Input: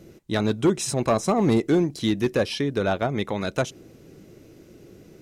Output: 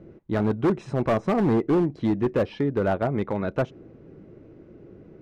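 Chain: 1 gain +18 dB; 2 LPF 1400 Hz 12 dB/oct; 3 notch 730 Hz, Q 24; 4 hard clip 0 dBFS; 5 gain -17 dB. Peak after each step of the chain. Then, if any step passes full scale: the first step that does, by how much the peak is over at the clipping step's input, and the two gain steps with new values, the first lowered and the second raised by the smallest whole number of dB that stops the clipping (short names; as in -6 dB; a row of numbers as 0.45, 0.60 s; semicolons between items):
+5.5, +6.0, +6.0, 0.0, -17.0 dBFS; step 1, 6.0 dB; step 1 +12 dB, step 5 -11 dB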